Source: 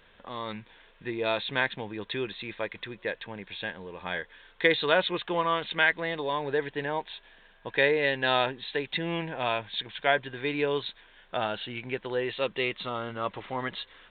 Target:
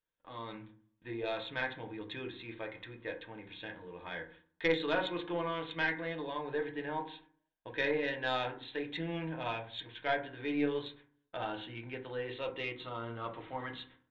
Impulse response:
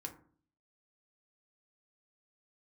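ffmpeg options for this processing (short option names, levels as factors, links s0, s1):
-filter_complex "[0:a]agate=range=0.0447:threshold=0.00355:ratio=16:detection=peak[s0];[1:a]atrim=start_sample=2205[s1];[s0][s1]afir=irnorm=-1:irlink=0,aeval=exprs='0.299*(cos(1*acos(clip(val(0)/0.299,-1,1)))-cos(1*PI/2))+0.0596*(cos(2*acos(clip(val(0)/0.299,-1,1)))-cos(2*PI/2))':c=same,volume=0.531"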